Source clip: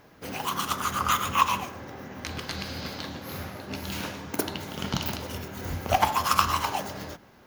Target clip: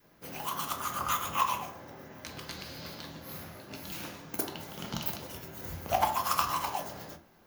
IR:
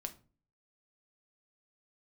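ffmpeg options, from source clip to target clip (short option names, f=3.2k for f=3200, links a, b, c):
-filter_complex "[0:a]highshelf=f=9.3k:g=10.5[a];[1:a]atrim=start_sample=2205,atrim=end_sample=4410[b];[a][b]afir=irnorm=-1:irlink=0,adynamicequalizer=threshold=0.0112:dfrequency=730:dqfactor=1.4:tfrequency=730:tqfactor=1.4:attack=5:release=100:ratio=0.375:range=2.5:mode=boostabove:tftype=bell,volume=-6dB"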